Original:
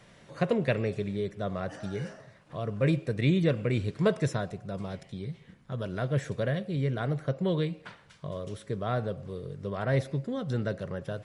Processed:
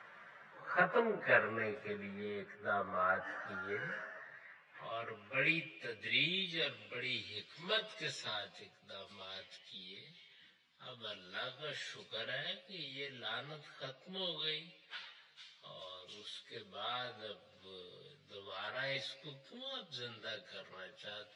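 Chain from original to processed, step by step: high shelf 5600 Hz -9.5 dB; band-pass sweep 1400 Hz -> 3700 Hz, 1.95–3.45; plain phase-vocoder stretch 1.9×; gain +11.5 dB

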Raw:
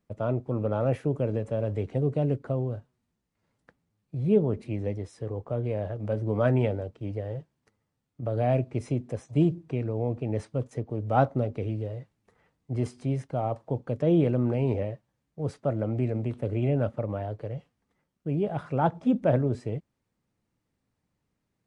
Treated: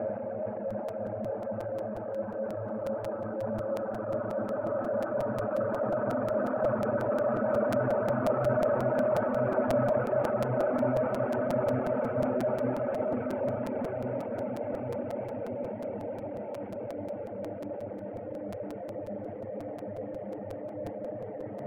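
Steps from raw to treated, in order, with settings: Paulstretch 16×, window 1.00 s, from 5.9; speaker cabinet 180–2000 Hz, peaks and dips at 230 Hz +6 dB, 400 Hz -5 dB, 600 Hz +8 dB, 860 Hz +10 dB, 1300 Hz +8 dB; resonator 290 Hz, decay 0.39 s, harmonics odd, mix 40%; reverse; upward compressor, threshold -30 dBFS; reverse; transient shaper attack -4 dB, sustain +4 dB; on a send: diffused feedback echo 0.56 s, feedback 50%, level -14.5 dB; on the sum: reverb removal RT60 0.81 s; crackling interface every 0.18 s, samples 256, repeat, from 0.7

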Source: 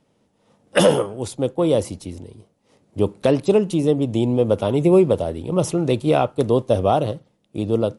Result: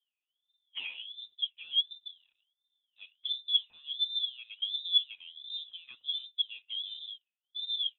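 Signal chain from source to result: sample leveller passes 1; wah 1.4 Hz 210–1300 Hz, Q 13; inverted band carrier 3800 Hz; gain -6 dB

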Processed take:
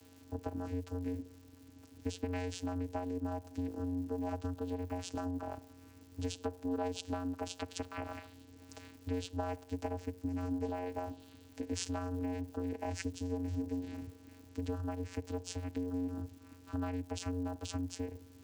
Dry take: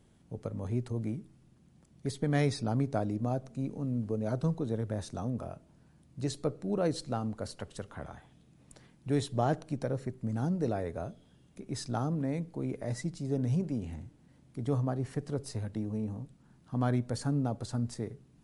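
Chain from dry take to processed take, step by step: compressor 6:1, threshold -40 dBFS, peak gain reduction 16.5 dB; vocoder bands 8, square 90 Hz; crackle 250/s -75 dBFS; tilt +3.5 dB/oct; gain +14.5 dB

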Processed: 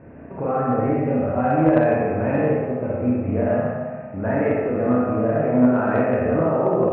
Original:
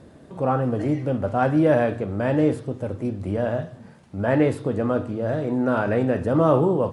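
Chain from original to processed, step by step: Chebyshev low-pass 2600 Hz, order 6; de-hum 179.9 Hz, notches 36; in parallel at 0 dB: compressor 6:1, threshold -31 dBFS, peak gain reduction 16.5 dB; on the sum: limiter -13 dBFS, peak gain reduction 8 dB; on a send: narrowing echo 66 ms, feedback 80%, band-pass 790 Hz, level -5.5 dB; on the sum: Schroeder reverb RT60 1.2 s, combs from 25 ms, DRR -5 dB; added harmonics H 3 -17 dB, 5 -32 dB, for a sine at -2 dBFS; gain -1 dB

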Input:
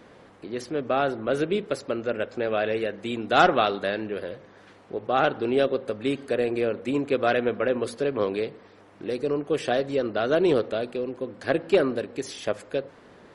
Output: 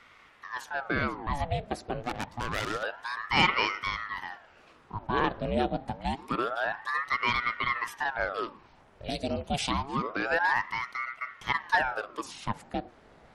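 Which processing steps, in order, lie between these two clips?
2–2.83 self-modulated delay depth 0.57 ms; 9.04–9.71 resonant high shelf 2300 Hz +10 dB, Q 1.5; ring modulator with a swept carrier 940 Hz, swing 80%, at 0.27 Hz; gain -2.5 dB

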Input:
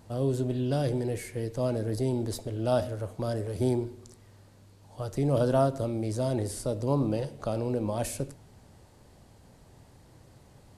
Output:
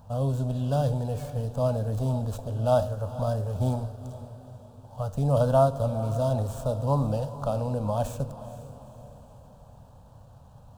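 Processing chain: median filter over 9 samples; fixed phaser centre 850 Hz, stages 4; diffused feedback echo 0.469 s, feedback 47%, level -13.5 dB; gain +6 dB

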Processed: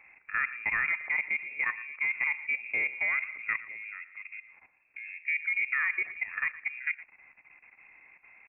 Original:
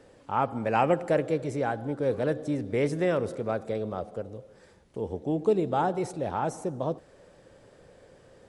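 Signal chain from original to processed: treble ducked by the level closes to 1900 Hz, closed at -22.5 dBFS; level quantiser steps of 14 dB; on a send: echo 0.115 s -17 dB; on the sum: inverted band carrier 2600 Hz

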